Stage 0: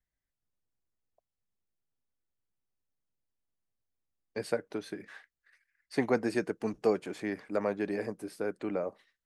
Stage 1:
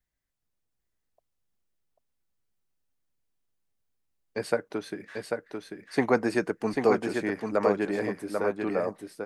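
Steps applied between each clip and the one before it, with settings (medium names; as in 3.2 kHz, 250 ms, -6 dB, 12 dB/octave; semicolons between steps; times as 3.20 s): dynamic bell 1.1 kHz, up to +5 dB, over -46 dBFS, Q 1.2; on a send: delay 792 ms -4.5 dB; on the sum: trim +3.5 dB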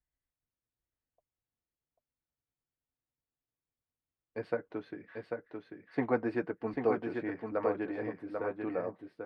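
distance through air 390 m; comb of notches 200 Hz; trim -4.5 dB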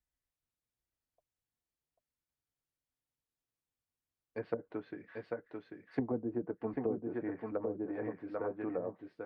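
low-pass that closes with the level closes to 360 Hz, closed at -28 dBFS; trim -1.5 dB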